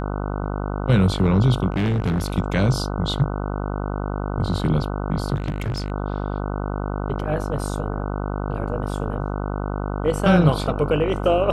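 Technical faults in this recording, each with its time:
mains buzz 50 Hz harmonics 30 −26 dBFS
0:01.70–0:02.36: clipping −18 dBFS
0:05.34–0:05.92: clipping −21 dBFS

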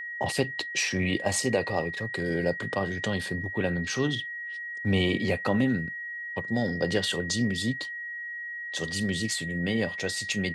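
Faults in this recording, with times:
whistle 1,900 Hz −34 dBFS

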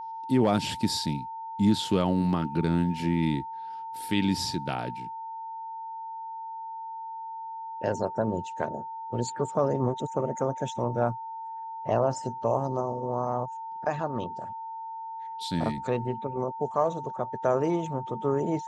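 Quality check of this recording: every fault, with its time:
whistle 900 Hz −35 dBFS

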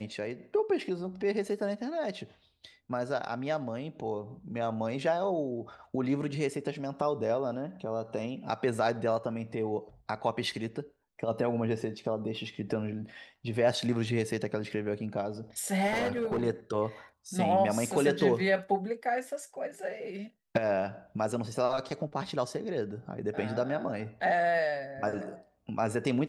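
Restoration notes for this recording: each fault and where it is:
0:15.86–0:16.42: clipping −26 dBFS

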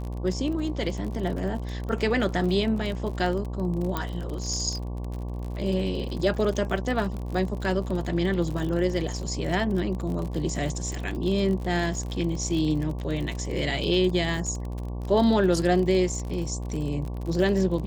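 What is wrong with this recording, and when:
mains buzz 60 Hz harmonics 19 −32 dBFS
surface crackle 46 per second −31 dBFS
0:03.97: click −13 dBFS
0:14.37: drop-out 2 ms

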